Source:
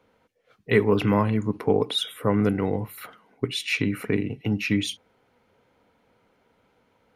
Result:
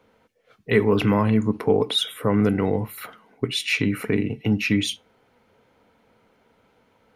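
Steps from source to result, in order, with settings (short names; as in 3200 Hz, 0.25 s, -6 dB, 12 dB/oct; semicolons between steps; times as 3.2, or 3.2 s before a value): in parallel at +2 dB: limiter -15.5 dBFS, peak gain reduction 8.5 dB; on the sum: resonator 220 Hz, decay 0.2 s, harmonics all, mix 40%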